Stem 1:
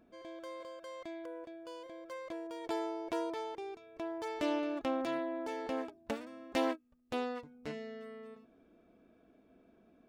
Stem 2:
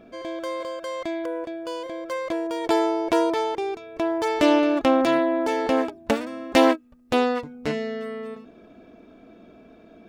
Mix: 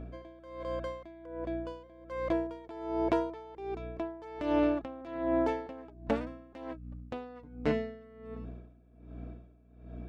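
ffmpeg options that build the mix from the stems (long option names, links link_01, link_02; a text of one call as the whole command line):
ffmpeg -i stem1.wav -i stem2.wav -filter_complex "[0:a]tremolo=f=200:d=0.462,volume=-5.5dB[link_01];[1:a]lowpass=frequency=1600:poles=1,alimiter=limit=-14dB:level=0:latency=1:release=353,aeval=exprs='val(0)+0.01*(sin(2*PI*60*n/s)+sin(2*PI*2*60*n/s)/2+sin(2*PI*3*60*n/s)/3+sin(2*PI*4*60*n/s)/4+sin(2*PI*5*60*n/s)/5)':channel_layout=same,volume=-1,volume=-1dB[link_02];[link_01][link_02]amix=inputs=2:normalize=0,aeval=exprs='val(0)*pow(10,-20*(0.5-0.5*cos(2*PI*1.3*n/s))/20)':channel_layout=same" out.wav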